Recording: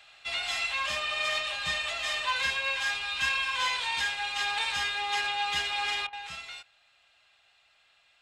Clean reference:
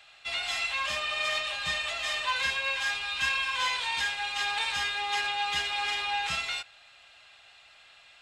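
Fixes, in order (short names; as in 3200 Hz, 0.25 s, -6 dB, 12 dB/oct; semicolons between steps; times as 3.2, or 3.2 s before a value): clip repair -18 dBFS; interpolate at 6.07, 57 ms; gain 0 dB, from 6.09 s +9.5 dB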